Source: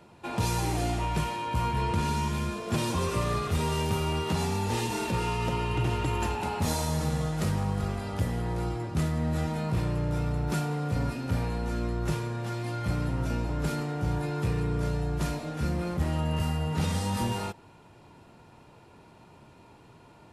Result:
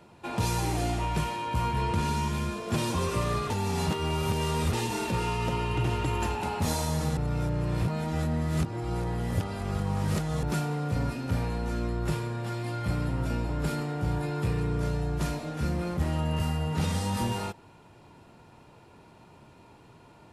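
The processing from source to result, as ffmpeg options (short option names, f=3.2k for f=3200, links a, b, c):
-filter_complex "[0:a]asettb=1/sr,asplit=3[a][b][c];[a]atrim=end=11.884[d];[b]atrim=start=11.88:end=14.59,asetpts=PTS-STARTPTS,afade=t=in:d=0.004:c=qsin,afade=t=out:st=2.706:d=0.004:c=qsin,bandreject=f=6.1k:w=12[e];[c]atrim=start=14.586[f];[d][e]acrossfade=d=0.004:c1=hsin:c2=qsin[g];[g][f]acrossfade=d=0.004:c1=qsin:c2=hsin,asplit=5[h][i][j][k][l];[h]atrim=end=3.502[m];[i]atrim=start=3.498:end=4.732,asetpts=PTS-STARTPTS,areverse[n];[j]atrim=start=4.728:end=7.172[o];[k]atrim=start=7.168:end=10.432,asetpts=PTS-STARTPTS,areverse[p];[l]atrim=start=10.428[q];[m][n]acrossfade=d=0.004:c1=hsin:c2=hsin[r];[r][o]acrossfade=d=0.004:c1=hsin:c2=hsin[s];[s][p]acrossfade=d=0.004:c1=hsin:c2=hsin[t];[t][q]acrossfade=d=0.004:c1=hsin:c2=hsin"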